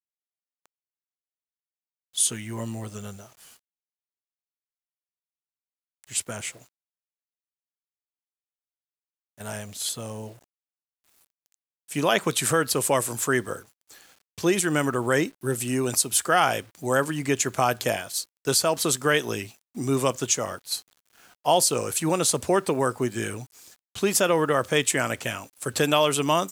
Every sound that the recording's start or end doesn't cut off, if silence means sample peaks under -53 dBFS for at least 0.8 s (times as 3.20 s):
2.13–3.59 s
6.04–6.69 s